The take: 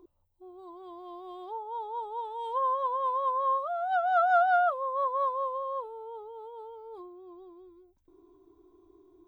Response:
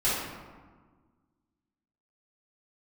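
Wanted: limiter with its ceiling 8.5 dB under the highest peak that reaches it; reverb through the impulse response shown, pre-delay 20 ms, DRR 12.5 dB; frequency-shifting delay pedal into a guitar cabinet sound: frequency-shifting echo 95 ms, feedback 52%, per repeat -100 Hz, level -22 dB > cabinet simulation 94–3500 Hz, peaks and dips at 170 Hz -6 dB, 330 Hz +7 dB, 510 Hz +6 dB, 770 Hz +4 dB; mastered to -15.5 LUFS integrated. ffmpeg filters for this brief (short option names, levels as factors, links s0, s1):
-filter_complex "[0:a]alimiter=limit=0.0668:level=0:latency=1,asplit=2[s0][s1];[1:a]atrim=start_sample=2205,adelay=20[s2];[s1][s2]afir=irnorm=-1:irlink=0,volume=0.0596[s3];[s0][s3]amix=inputs=2:normalize=0,asplit=5[s4][s5][s6][s7][s8];[s5]adelay=95,afreqshift=-100,volume=0.0794[s9];[s6]adelay=190,afreqshift=-200,volume=0.0412[s10];[s7]adelay=285,afreqshift=-300,volume=0.0214[s11];[s8]adelay=380,afreqshift=-400,volume=0.0112[s12];[s4][s9][s10][s11][s12]amix=inputs=5:normalize=0,highpass=94,equalizer=f=170:t=q:w=4:g=-6,equalizer=f=330:t=q:w=4:g=7,equalizer=f=510:t=q:w=4:g=6,equalizer=f=770:t=q:w=4:g=4,lowpass=f=3500:w=0.5412,lowpass=f=3500:w=1.3066,volume=4.73"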